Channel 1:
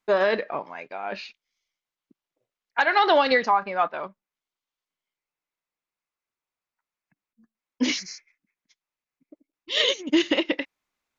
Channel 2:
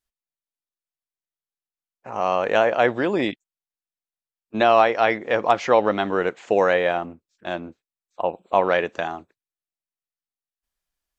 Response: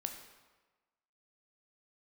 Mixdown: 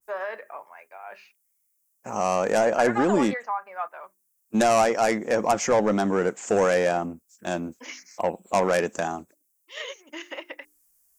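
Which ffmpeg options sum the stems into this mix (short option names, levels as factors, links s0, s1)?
-filter_complex "[0:a]acrossover=split=550 2600:gain=0.0891 1 0.0708[s0][s1][s2];[s0][s1][s2]amix=inputs=3:normalize=0,bandreject=f=50:t=h:w=6,bandreject=f=100:t=h:w=6,bandreject=f=150:t=h:w=6,bandreject=f=200:t=h:w=6,bandreject=f=250:t=h:w=6,bandreject=f=300:t=h:w=6,bandreject=f=350:t=h:w=6,bandreject=f=400:t=h:w=6,volume=0.473[s3];[1:a]equalizer=f=210:w=1.7:g=7,asoftclip=type=tanh:threshold=0.211,volume=1[s4];[s3][s4]amix=inputs=2:normalize=0,aexciter=amount=10.8:drive=6.6:freq=5800,adynamicequalizer=threshold=0.0126:dfrequency=1800:dqfactor=0.7:tfrequency=1800:tqfactor=0.7:attack=5:release=100:ratio=0.375:range=2.5:mode=cutabove:tftype=highshelf"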